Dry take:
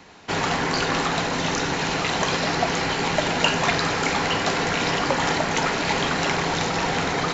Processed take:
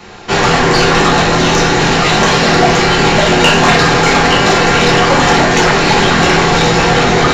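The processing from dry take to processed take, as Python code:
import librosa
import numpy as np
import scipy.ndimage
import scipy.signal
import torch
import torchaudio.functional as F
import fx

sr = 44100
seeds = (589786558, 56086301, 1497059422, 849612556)

y = fx.room_shoebox(x, sr, seeds[0], volume_m3=34.0, walls='mixed', distance_m=0.93)
y = 10.0 ** (-9.5 / 20.0) * np.tanh(y / 10.0 ** (-9.5 / 20.0))
y = y * librosa.db_to_amplitude(8.5)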